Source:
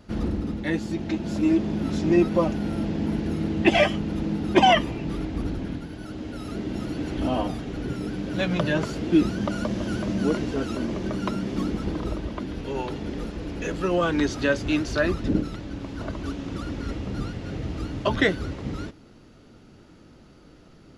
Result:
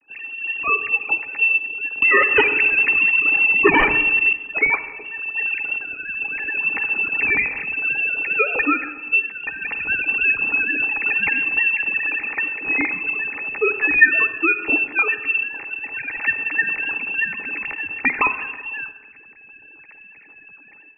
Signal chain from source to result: formants replaced by sine waves; high-pass 210 Hz 12 dB/octave; 2.02–4.33 s: sine folder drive 15 dB, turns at -7.5 dBFS; level rider gain up to 15.5 dB; frequency inversion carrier 3 kHz; compression 6:1, threshold -13 dBFS, peak gain reduction 10.5 dB; small resonant body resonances 300/420/820/1800 Hz, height 12 dB, ringing for 45 ms; reverberation RT60 1.1 s, pre-delay 45 ms, DRR 11.5 dB; trim -2.5 dB

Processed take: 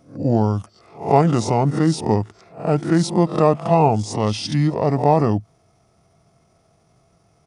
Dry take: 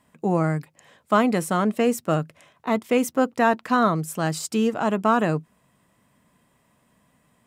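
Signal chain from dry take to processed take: reverse spectral sustain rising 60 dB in 0.36 s; graphic EQ with 31 bands 315 Hz +4 dB, 1 kHz +4 dB, 2.5 kHz -8 dB, 10 kHz -3 dB; pitch shift -7 st; trim +3 dB

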